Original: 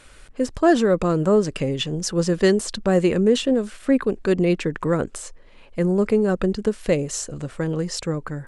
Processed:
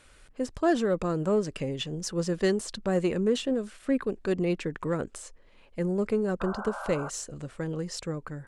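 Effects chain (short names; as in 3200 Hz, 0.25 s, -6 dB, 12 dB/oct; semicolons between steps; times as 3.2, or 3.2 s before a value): added harmonics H 6 -33 dB, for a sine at -6 dBFS; painted sound noise, 6.4–7.1, 510–1600 Hz -30 dBFS; gain -8 dB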